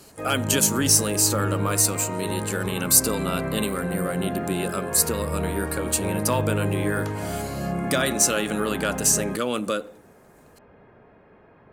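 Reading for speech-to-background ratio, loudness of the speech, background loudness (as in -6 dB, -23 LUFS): 6.0 dB, -23.5 LUFS, -29.5 LUFS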